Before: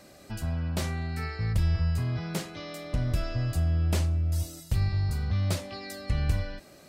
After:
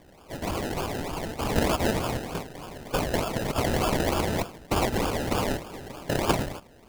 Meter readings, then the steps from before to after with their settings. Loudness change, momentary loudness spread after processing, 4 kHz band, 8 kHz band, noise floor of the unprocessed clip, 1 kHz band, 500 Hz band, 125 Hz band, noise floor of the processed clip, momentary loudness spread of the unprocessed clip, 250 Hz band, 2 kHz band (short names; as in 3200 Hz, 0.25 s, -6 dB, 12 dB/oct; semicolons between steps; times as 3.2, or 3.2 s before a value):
+2.0 dB, 11 LU, +7.0 dB, +6.5 dB, -53 dBFS, +13.5 dB, +12.0 dB, -6.0 dB, -53 dBFS, 9 LU, +6.5 dB, +7.0 dB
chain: spectral whitening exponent 0.1; decimation with a swept rate 31×, swing 60% 3.3 Hz